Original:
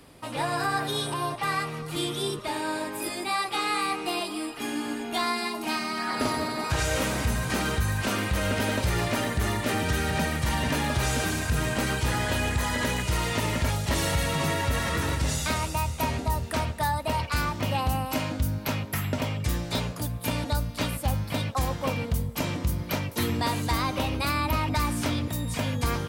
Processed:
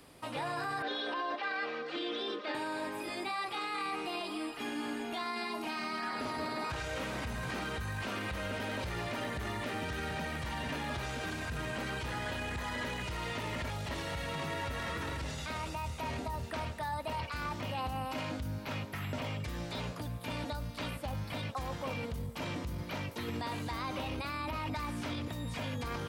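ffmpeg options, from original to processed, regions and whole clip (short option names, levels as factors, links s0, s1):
-filter_complex "[0:a]asettb=1/sr,asplit=3[s0][s1][s2];[s0]atrim=end=0.824[s3];[s1]atrim=start=0.82:end=2.55,asetpts=PTS-STARTPTS,afade=t=in:d=0.004:c=qsin,afade=t=out:st=1.726:d=0.004:c=qsin,highpass=f=250:w=0.5412,highpass=f=250:w=1.3066,equalizer=f=370:t=q:w=4:g=5,equalizer=f=600:t=q:w=4:g=6,equalizer=f=870:t=q:w=4:g=-4,equalizer=f=1600:t=q:w=4:g=6,lowpass=f=4700:w=0.5412,lowpass=f=4700:w=1.3066,bandreject=f=60:t=h:w=6,bandreject=f=120:t=h:w=6,bandreject=f=180:t=h:w=6,bandreject=f=240:t=h:w=6,bandreject=f=300:t=h:w=6,bandreject=f=360:t=h:w=6,bandreject=f=420:t=h:w=6,bandreject=f=480:t=h:w=6,bandreject=f=540:t=h:w=6,aecho=1:1:3.9:0.62,atrim=end_sample=76293[s4];[s2]atrim=start=2.546[s5];[s3][s4]acrossfade=d=0.004:c1=hsin:c2=qsin[s6];[s6][s5]acrossfade=d=0.004:c1=qsin:c2=hsin,alimiter=limit=0.0631:level=0:latency=1:release=11,lowshelf=f=250:g=-4.5,acrossover=split=4600[s7][s8];[s8]acompressor=threshold=0.00251:ratio=4:attack=1:release=60[s9];[s7][s9]amix=inputs=2:normalize=0,volume=0.668"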